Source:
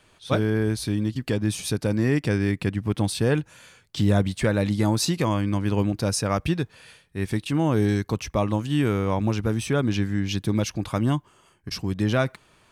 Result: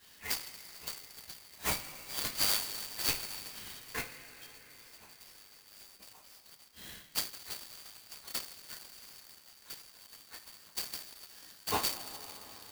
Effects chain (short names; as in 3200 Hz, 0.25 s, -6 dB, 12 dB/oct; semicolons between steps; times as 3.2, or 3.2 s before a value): four-band scrambler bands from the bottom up 4321; 1.99–3.15 negative-ratio compressor -28 dBFS, ratio -1; flipped gate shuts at -17 dBFS, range -33 dB; 3.99–4.68 double band-pass 880 Hz, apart 3 oct; two-slope reverb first 0.23 s, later 4.6 s, from -22 dB, DRR -9 dB; clock jitter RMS 0.041 ms; gain -8 dB